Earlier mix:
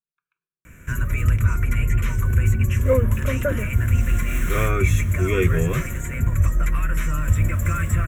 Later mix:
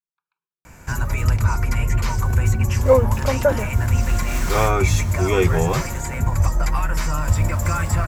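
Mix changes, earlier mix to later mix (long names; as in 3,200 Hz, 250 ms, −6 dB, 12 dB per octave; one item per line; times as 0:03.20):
speech −5.0 dB
master: remove phaser with its sweep stopped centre 2,000 Hz, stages 4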